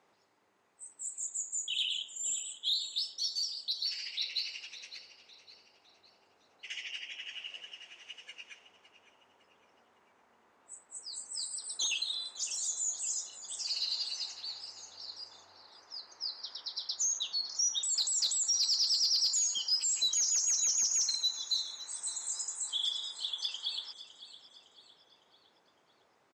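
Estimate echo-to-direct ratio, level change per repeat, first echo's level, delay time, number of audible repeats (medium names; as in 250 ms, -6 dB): -14.0 dB, -7.5 dB, -15.0 dB, 558 ms, 3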